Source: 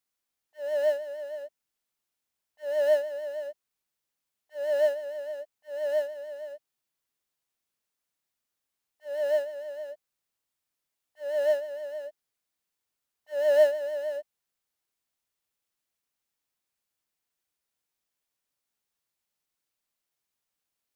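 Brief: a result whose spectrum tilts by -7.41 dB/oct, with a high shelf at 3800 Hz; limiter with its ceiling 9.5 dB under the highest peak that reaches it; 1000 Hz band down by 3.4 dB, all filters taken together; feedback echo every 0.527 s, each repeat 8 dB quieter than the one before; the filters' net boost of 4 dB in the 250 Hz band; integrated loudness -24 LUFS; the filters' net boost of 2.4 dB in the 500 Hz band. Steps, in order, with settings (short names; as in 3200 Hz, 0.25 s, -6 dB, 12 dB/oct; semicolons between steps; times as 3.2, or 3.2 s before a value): bell 250 Hz +3.5 dB; bell 500 Hz +5 dB; bell 1000 Hz -6 dB; high shelf 3800 Hz -9 dB; limiter -20 dBFS; feedback echo 0.527 s, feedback 40%, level -8 dB; gain +6.5 dB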